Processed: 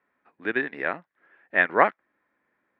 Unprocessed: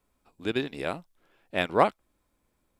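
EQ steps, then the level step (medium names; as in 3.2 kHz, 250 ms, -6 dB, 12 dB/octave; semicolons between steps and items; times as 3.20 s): high-pass 220 Hz 12 dB/octave; resonant low-pass 1.8 kHz, resonance Q 5.4; 0.0 dB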